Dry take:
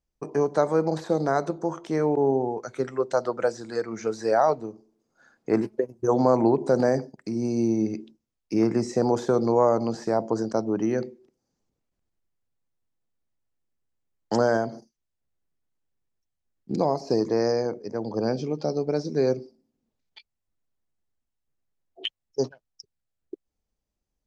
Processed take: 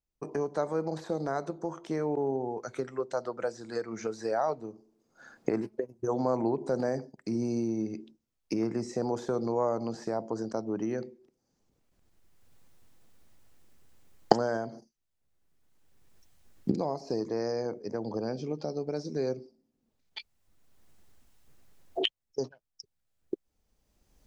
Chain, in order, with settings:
camcorder AGC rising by 19 dB per second
0:18.86–0:19.29: high-shelf EQ 7,500 Hz +7 dB
level −8.5 dB

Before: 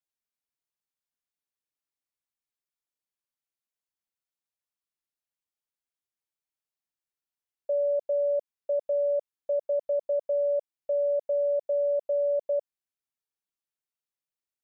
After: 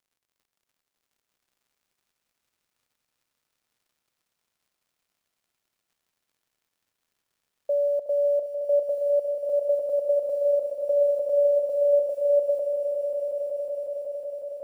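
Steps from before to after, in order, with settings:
floating-point word with a short mantissa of 6 bits
surface crackle 85 per second −62 dBFS
echo that builds up and dies away 184 ms, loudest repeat 5, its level −8.5 dB
level +2.5 dB

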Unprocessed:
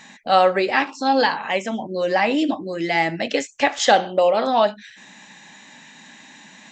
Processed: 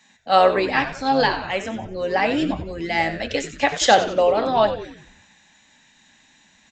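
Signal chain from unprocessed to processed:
echo with shifted repeats 92 ms, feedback 53%, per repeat −120 Hz, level −11 dB
multiband upward and downward expander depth 40%
level −1.5 dB

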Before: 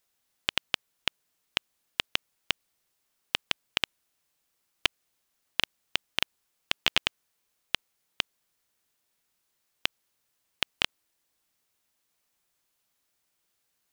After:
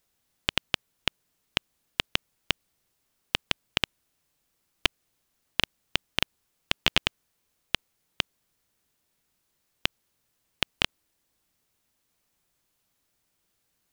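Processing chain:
low-shelf EQ 350 Hz +9 dB
level +1 dB

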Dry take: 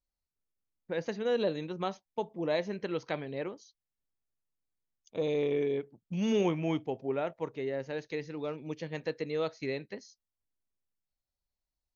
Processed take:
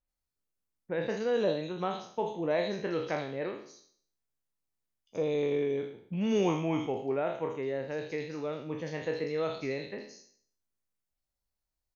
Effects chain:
peak hold with a decay on every bin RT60 0.57 s
multiband delay without the direct sound lows, highs 80 ms, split 3,200 Hz

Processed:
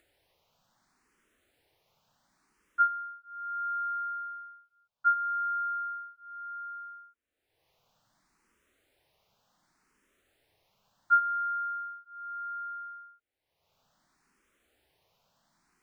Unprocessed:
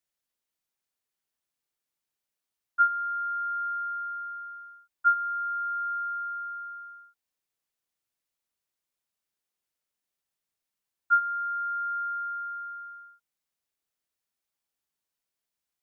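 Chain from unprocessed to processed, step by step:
low-pass filter 1,400 Hz 6 dB per octave
upward compression, threshold −53 dBFS
frequency shifter mixed with the dry sound +0.68 Hz
level +3 dB

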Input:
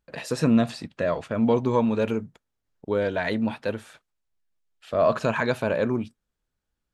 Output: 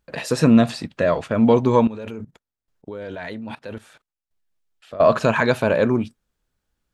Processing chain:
0:01.87–0:05.04: output level in coarse steps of 19 dB
level +6 dB

